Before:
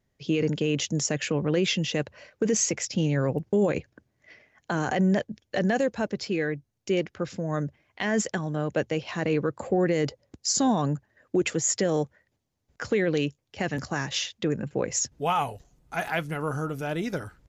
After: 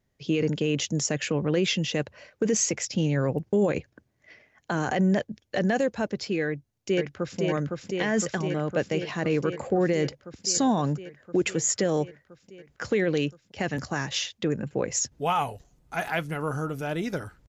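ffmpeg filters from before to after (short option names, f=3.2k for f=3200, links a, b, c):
-filter_complex "[0:a]asplit=2[a][b];[b]afade=t=in:st=6.46:d=0.01,afade=t=out:st=7.39:d=0.01,aecho=0:1:510|1020|1530|2040|2550|3060|3570|4080|4590|5100|5610|6120:0.707946|0.566357|0.453085|0.362468|0.289975|0.23198|0.185584|0.148467|0.118774|0.0950189|0.0760151|0.0608121[c];[a][c]amix=inputs=2:normalize=0"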